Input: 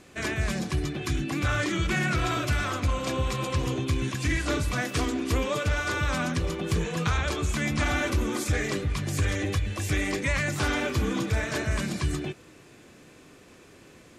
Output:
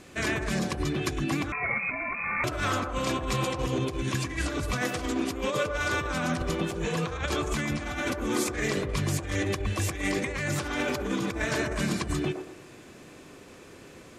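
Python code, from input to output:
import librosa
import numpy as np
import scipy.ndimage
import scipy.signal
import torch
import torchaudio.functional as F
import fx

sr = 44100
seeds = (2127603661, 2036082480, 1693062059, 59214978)

y = fx.over_compress(x, sr, threshold_db=-29.0, ratio=-0.5)
y = fx.echo_wet_bandpass(y, sr, ms=114, feedback_pct=36, hz=660.0, wet_db=-3.5)
y = fx.freq_invert(y, sr, carrier_hz=2500, at=(1.52, 2.44))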